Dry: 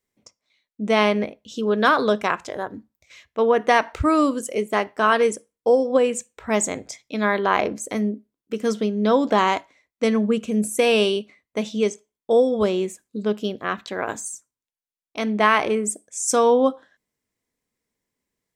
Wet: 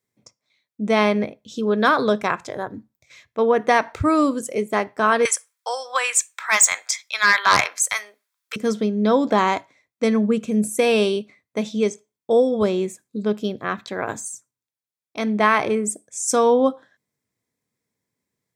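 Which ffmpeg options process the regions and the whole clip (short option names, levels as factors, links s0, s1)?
-filter_complex "[0:a]asettb=1/sr,asplit=3[s0][s1][s2];[s0]atrim=end=5.254[s3];[s1]atrim=start=5.25:end=8.56,asetpts=PTS-STARTPTS,afade=t=in:d=0.004:c=qsin,afade=t=out:st=3.306:d=0.004:c=qsin,highpass=f=1100:w=0.5412,highpass=f=1100:w=1.3066,aeval=exprs='0.422*sin(PI/2*2.82*val(0)/0.422)':c=same[s4];[s2]atrim=start=8.556[s5];[s3][s4]acrossfade=d=0.004:c1=hsin:c2=qsin[s6];[s6][s5]acrossfade=d=0.004:c1=qsin:c2=hsin,highpass=90,equalizer=f=120:t=o:w=0.89:g=8.5,bandreject=f=2900:w=9.6"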